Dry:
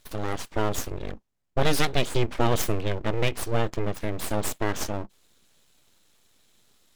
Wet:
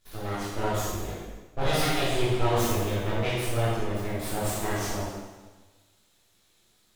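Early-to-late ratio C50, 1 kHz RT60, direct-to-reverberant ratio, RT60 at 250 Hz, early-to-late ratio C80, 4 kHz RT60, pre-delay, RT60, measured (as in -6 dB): -2.0 dB, 1.3 s, -10.0 dB, 1.3 s, 1.0 dB, 1.2 s, 6 ms, 1.3 s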